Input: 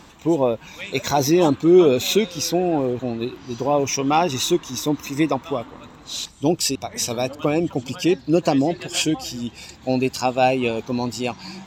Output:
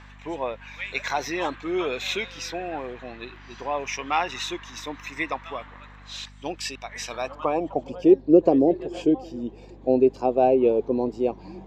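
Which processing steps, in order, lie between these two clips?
band-pass sweep 1700 Hz -> 420 Hz, 7.06–8.12; hum 50 Hz, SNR 23 dB; bell 1400 Hz -5 dB 0.44 oct; gain +6.5 dB

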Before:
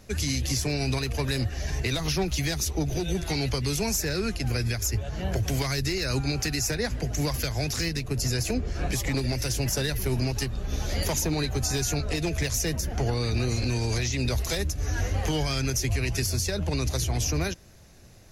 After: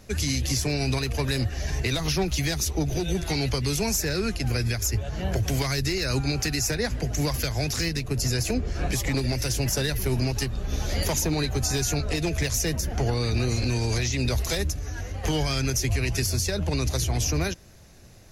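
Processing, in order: 14.76–15.24 compressor 6:1, threshold -31 dBFS, peak gain reduction 9 dB; gain +1.5 dB

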